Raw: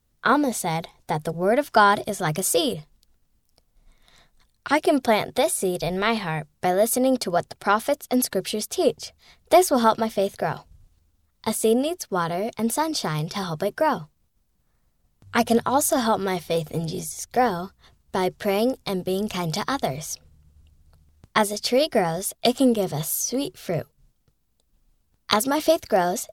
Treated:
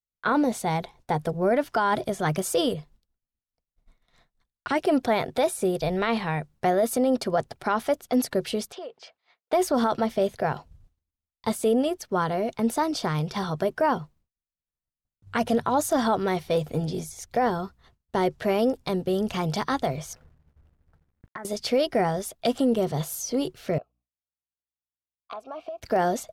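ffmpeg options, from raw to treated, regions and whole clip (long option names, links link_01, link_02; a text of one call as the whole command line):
ffmpeg -i in.wav -filter_complex "[0:a]asettb=1/sr,asplit=3[link_01][link_02][link_03];[link_01]atrim=end=8.724[link_04];[link_02]atrim=start=8.72:end=9.53,asetpts=PTS-STARTPTS,afade=type=in:duration=0.004:curve=qsin,afade=type=out:start_time=0.806:duration=0.004:curve=qsin,highpass=570,lowpass=3500,acompressor=threshold=-34dB:ratio=8:attack=3.2:release=140:knee=1:detection=peak[link_05];[link_03]atrim=start=9.526[link_06];[link_04][link_05]acrossfade=duration=0.004:curve1=hsin:curve2=qsin[link_07];[link_07][link_06]acrossfade=duration=0.004:curve1=qsin:curve2=hsin,asettb=1/sr,asplit=3[link_08][link_09][link_10];[link_08]atrim=end=20.134[link_11];[link_09]atrim=start=20.13:end=21.45,asetpts=PTS-STARTPTS,afade=type=in:duration=0.004:curve=qsin,afade=type=out:start_time=1.316:duration=0.004:curve=qsin,highshelf=frequency=2400:width_type=q:width=3:gain=-11,acompressor=threshold=-33dB:ratio=12:attack=3.2:release=140:knee=1:detection=peak,aeval=exprs='val(0)*gte(abs(val(0)),0.00119)':channel_layout=same[link_12];[link_10]atrim=start=21.446[link_13];[link_11][link_12]acrossfade=duration=0.004:curve1=hsin:curve2=qsin[link_14];[link_14][link_13]acrossfade=duration=0.004:curve1=qsin:curve2=hsin,asettb=1/sr,asplit=3[link_15][link_16][link_17];[link_15]atrim=end=23.784[link_18];[link_16]atrim=start=23.78:end=25.82,asetpts=PTS-STARTPTS,afade=type=in:duration=0.004:curve=qsin,afade=type=out:start_time=2.036:duration=0.004:curve=qsin,asplit=3[link_19][link_20][link_21];[link_19]bandpass=frequency=730:width_type=q:width=8,volume=0dB[link_22];[link_20]bandpass=frequency=1090:width_type=q:width=8,volume=-6dB[link_23];[link_21]bandpass=frequency=2440:width_type=q:width=8,volume=-9dB[link_24];[link_22][link_23][link_24]amix=inputs=3:normalize=0,acompressor=threshold=-31dB:ratio=12:attack=3.2:release=140:knee=1:detection=peak,aeval=exprs='val(0)+0.000158*(sin(2*PI*60*n/s)+sin(2*PI*2*60*n/s)/2+sin(2*PI*3*60*n/s)/3+sin(2*PI*4*60*n/s)/4+sin(2*PI*5*60*n/s)/5)':channel_layout=same[link_25];[link_17]atrim=start=25.816[link_26];[link_18][link_25]acrossfade=duration=0.004:curve1=hsin:curve2=qsin[link_27];[link_27][link_26]acrossfade=duration=0.004:curve1=qsin:curve2=hsin,agate=range=-33dB:threshold=-48dB:ratio=3:detection=peak,highshelf=frequency=4100:gain=-9.5,alimiter=limit=-14dB:level=0:latency=1:release=19" out.wav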